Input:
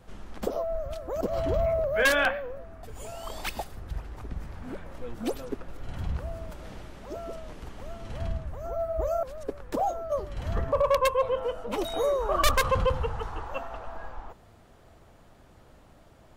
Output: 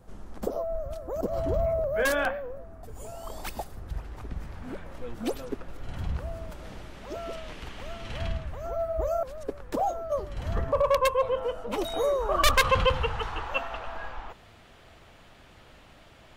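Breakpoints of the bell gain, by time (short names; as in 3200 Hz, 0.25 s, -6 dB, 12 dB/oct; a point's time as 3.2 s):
bell 2800 Hz 1.9 oct
3.42 s -8 dB
4.16 s +1.5 dB
6.8 s +1.5 dB
7.32 s +10.5 dB
8.34 s +10.5 dB
9.07 s +0.5 dB
12.34 s +0.5 dB
12.79 s +11.5 dB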